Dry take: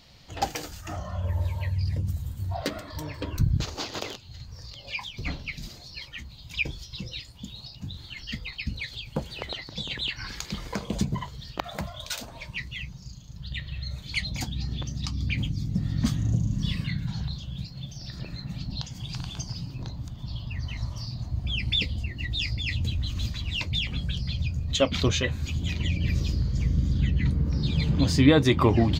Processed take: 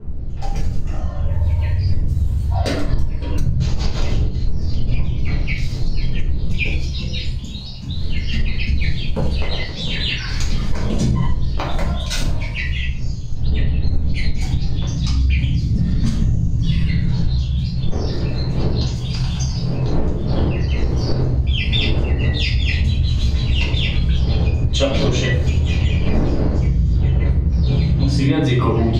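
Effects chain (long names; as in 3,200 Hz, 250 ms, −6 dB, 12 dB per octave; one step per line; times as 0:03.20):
fade in at the beginning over 2.20 s
wind on the microphone 110 Hz −31 dBFS, from 0:17.90 350 Hz
low-pass filter 11,000 Hz 12 dB per octave
low-shelf EQ 140 Hz +3.5 dB
rectangular room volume 76 cubic metres, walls mixed, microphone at 1.6 metres
downward compressor 10 to 1, threshold −14 dBFS, peak gain reduction 18.5 dB
level +2 dB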